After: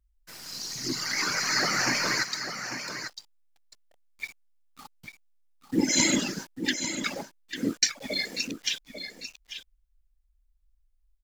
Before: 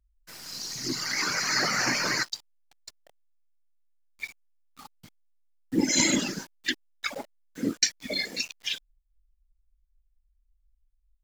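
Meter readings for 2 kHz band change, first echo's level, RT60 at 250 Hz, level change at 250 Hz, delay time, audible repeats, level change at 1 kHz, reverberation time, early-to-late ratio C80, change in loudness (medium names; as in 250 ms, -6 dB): +0.5 dB, -9.0 dB, no reverb, +0.5 dB, 846 ms, 1, +0.5 dB, no reverb, no reverb, -0.5 dB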